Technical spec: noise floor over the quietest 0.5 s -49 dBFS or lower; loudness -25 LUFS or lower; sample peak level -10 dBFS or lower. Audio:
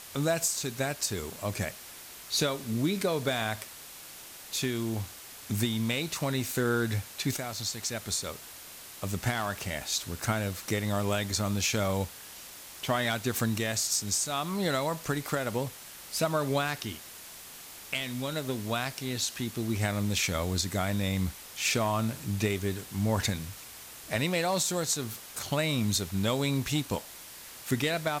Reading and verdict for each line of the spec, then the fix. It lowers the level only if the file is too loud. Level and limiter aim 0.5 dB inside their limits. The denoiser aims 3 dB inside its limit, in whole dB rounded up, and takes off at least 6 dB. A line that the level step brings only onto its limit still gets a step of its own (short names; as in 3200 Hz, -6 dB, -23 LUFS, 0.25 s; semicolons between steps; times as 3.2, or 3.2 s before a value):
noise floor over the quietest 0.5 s -47 dBFS: fail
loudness -30.5 LUFS: OK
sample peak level -15.5 dBFS: OK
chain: denoiser 6 dB, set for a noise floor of -47 dBFS